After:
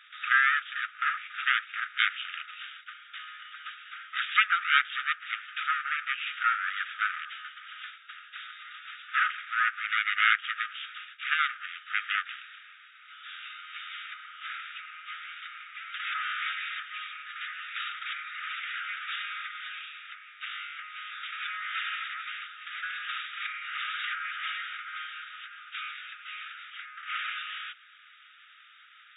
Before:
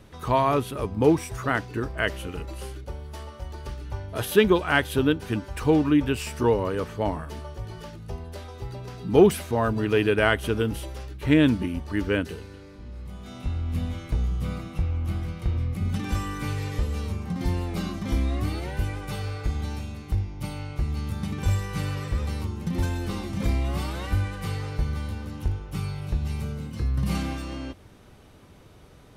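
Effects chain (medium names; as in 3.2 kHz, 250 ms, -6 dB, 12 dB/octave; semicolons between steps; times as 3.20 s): full-wave rectifier; low-pass that closes with the level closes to 2 kHz, closed at -20 dBFS; brick-wall FIR band-pass 1.2–3.8 kHz; trim +9 dB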